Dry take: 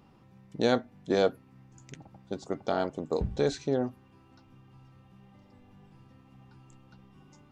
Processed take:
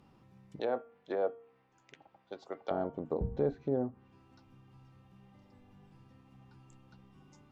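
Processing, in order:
0:00.59–0:02.71: three-way crossover with the lows and the highs turned down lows −19 dB, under 400 Hz, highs −22 dB, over 4,500 Hz
treble cut that deepens with the level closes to 920 Hz, closed at −27 dBFS
hum removal 231.8 Hz, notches 14
level −3.5 dB

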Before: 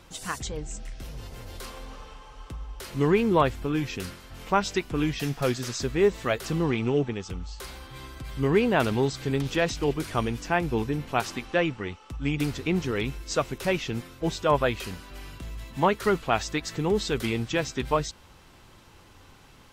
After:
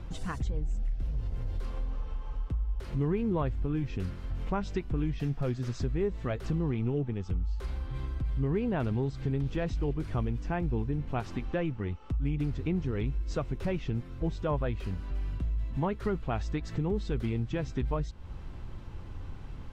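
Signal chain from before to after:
RIAA equalisation playback
downward compressor 2.5 to 1, threshold −33 dBFS, peak gain reduction 14.5 dB

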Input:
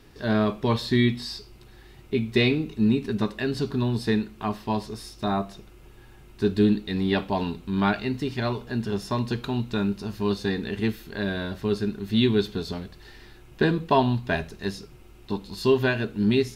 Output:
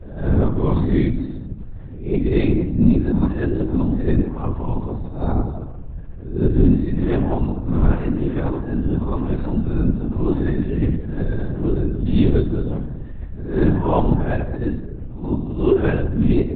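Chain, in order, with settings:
peak hold with a rise ahead of every peak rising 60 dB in 0.48 s
spectral tilt −4 dB per octave
in parallel at −10 dB: soft clipping −12.5 dBFS, distortion −11 dB
on the sum: mains-hum notches 60/120 Hz
on a send at −8 dB: convolution reverb RT60 1.1 s, pre-delay 52 ms
on the sum: linear-prediction vocoder at 8 kHz whisper
one half of a high-frequency compander decoder only
level −4.5 dB

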